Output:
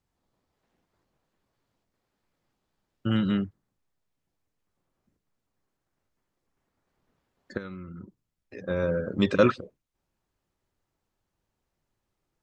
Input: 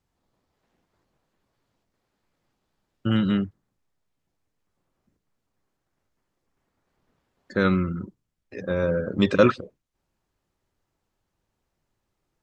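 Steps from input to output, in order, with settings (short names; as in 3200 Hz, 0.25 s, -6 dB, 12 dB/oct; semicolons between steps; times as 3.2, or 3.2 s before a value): 7.57–8.68 compressor 8:1, threshold -34 dBFS, peak gain reduction 17.5 dB; gain -3 dB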